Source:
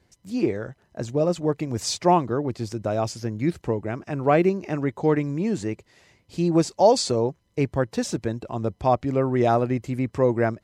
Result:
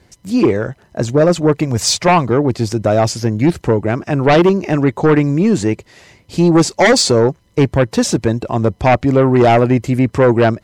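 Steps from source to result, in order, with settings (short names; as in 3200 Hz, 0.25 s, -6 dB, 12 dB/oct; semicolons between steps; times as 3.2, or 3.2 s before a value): 1.64–2.28 bell 320 Hz -7.5 dB 0.67 oct; sine folder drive 9 dB, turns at -5.5 dBFS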